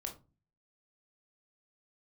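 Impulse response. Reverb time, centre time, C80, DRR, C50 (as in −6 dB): 0.30 s, 15 ms, 18.5 dB, 2.0 dB, 10.5 dB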